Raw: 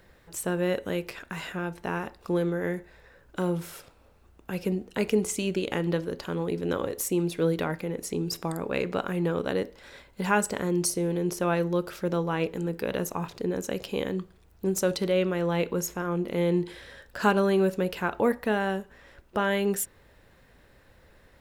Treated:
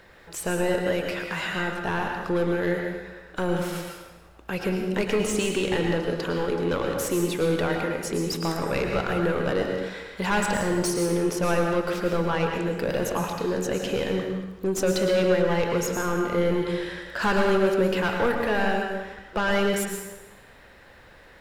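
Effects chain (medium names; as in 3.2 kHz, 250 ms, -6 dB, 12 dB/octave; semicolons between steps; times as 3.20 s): overdrive pedal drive 22 dB, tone 4 kHz, clips at -9 dBFS; bass shelf 130 Hz +11.5 dB; plate-style reverb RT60 1.1 s, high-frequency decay 0.85×, pre-delay 95 ms, DRR 2 dB; trim -7 dB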